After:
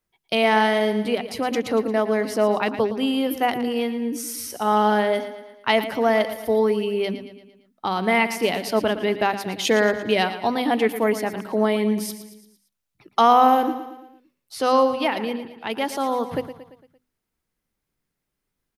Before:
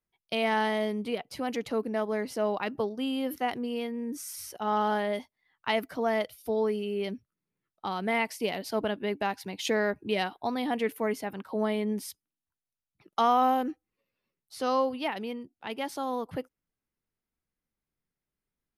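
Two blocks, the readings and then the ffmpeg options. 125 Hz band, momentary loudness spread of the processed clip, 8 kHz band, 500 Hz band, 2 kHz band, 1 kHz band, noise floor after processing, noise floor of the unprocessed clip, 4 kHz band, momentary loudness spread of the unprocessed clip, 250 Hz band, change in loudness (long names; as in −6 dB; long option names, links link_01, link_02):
+8.0 dB, 10 LU, +9.0 dB, +9.0 dB, +9.0 dB, +9.0 dB, −81 dBFS, below −85 dBFS, +9.0 dB, 10 LU, +8.0 dB, +8.5 dB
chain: -af "bandreject=frequency=50:width_type=h:width=6,bandreject=frequency=100:width_type=h:width=6,bandreject=frequency=150:width_type=h:width=6,bandreject=frequency=200:width_type=h:width=6,bandreject=frequency=250:width_type=h:width=6,aecho=1:1:114|228|342|456|570:0.251|0.128|0.0653|0.0333|0.017,volume=8.5dB"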